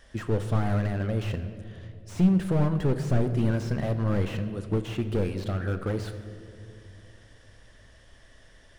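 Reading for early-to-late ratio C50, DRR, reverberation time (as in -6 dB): 10.5 dB, 9.0 dB, 2.5 s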